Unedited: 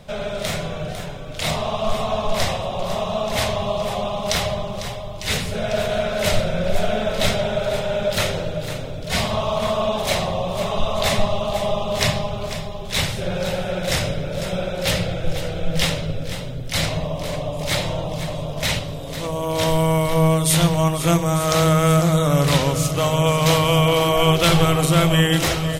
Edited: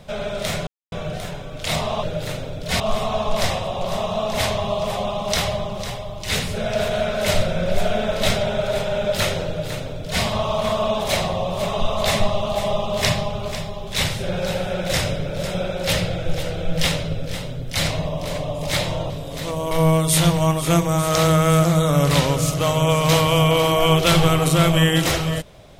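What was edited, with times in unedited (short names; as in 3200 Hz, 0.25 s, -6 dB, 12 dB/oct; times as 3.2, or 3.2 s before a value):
0.67 insert silence 0.25 s
8.44–9.21 copy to 1.78
18.08–18.86 cut
19.47–20.08 cut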